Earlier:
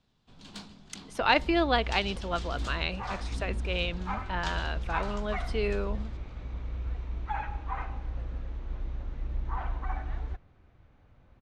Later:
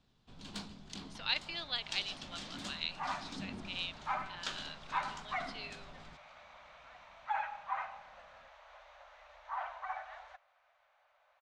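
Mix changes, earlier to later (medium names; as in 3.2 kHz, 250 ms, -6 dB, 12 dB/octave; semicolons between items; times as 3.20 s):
speech: add band-pass filter 4.1 kHz, Q 2.4; second sound: add elliptic high-pass 600 Hz, stop band 40 dB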